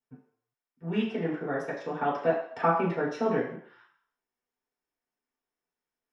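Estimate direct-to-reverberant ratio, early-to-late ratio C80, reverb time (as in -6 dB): -7.5 dB, 8.0 dB, 0.60 s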